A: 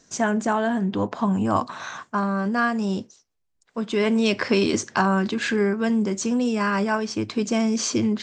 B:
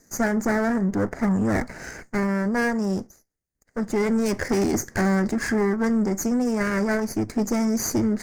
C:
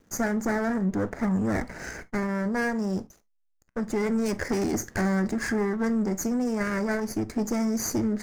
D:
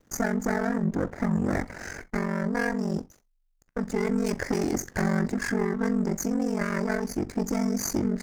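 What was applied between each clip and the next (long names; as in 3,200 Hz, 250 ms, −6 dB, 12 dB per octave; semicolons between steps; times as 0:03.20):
lower of the sound and its delayed copy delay 0.45 ms; hard clipping −18.5 dBFS, distortion −15 dB; flat-topped bell 3,200 Hz −15.5 dB 1 octave; level +1.5 dB
in parallel at +2 dB: downward compressor, threshold −30 dBFS, peak gain reduction 10.5 dB; on the sum: slack as between gear wheels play −43.5 dBFS; convolution reverb, pre-delay 8 ms, DRR 15.5 dB; level −7 dB
ring modulation 23 Hz; level +2.5 dB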